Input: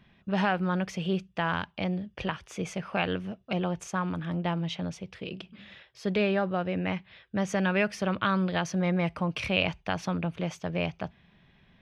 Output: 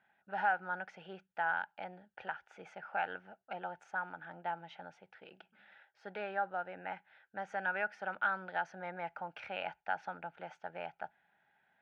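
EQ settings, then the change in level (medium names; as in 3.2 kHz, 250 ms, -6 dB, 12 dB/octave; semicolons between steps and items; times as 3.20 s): two resonant band-passes 1.1 kHz, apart 0.8 oct; +1.0 dB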